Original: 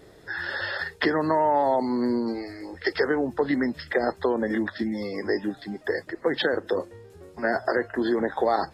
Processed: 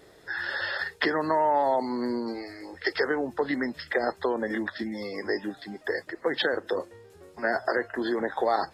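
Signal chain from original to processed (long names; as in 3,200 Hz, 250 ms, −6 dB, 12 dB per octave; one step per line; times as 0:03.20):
low-shelf EQ 360 Hz −8 dB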